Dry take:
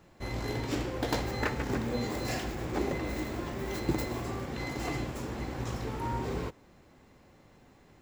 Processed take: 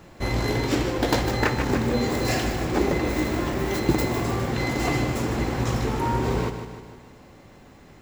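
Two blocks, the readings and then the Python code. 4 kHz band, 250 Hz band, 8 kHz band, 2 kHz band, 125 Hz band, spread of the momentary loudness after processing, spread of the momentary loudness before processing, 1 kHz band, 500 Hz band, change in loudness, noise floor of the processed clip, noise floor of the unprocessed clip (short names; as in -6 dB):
+9.5 dB, +9.5 dB, +9.5 dB, +9.5 dB, +10.0 dB, 3 LU, 5 LU, +9.5 dB, +9.5 dB, +9.5 dB, -49 dBFS, -59 dBFS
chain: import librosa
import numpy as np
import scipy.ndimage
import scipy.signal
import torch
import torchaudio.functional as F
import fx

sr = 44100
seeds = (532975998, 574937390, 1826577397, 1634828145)

p1 = fx.rider(x, sr, range_db=10, speed_s=0.5)
p2 = x + (p1 * librosa.db_to_amplitude(1.0))
p3 = fx.echo_feedback(p2, sr, ms=153, feedback_pct=53, wet_db=-9.5)
y = p3 * librosa.db_to_amplitude(2.5)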